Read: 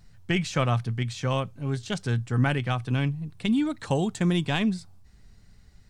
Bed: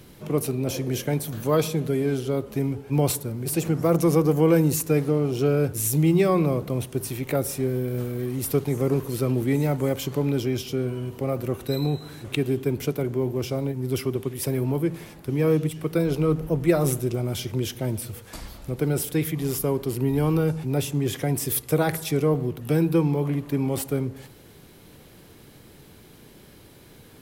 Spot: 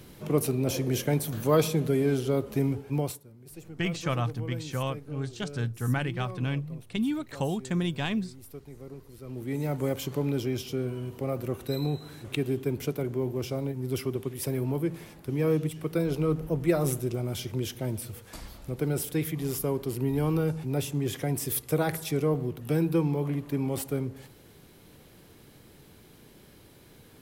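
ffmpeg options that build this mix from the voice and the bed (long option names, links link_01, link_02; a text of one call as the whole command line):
ffmpeg -i stem1.wav -i stem2.wav -filter_complex "[0:a]adelay=3500,volume=-4.5dB[link_01];[1:a]volume=15.5dB,afade=type=out:start_time=2.74:duration=0.46:silence=0.1,afade=type=in:start_time=9.22:duration=0.62:silence=0.149624[link_02];[link_01][link_02]amix=inputs=2:normalize=0" out.wav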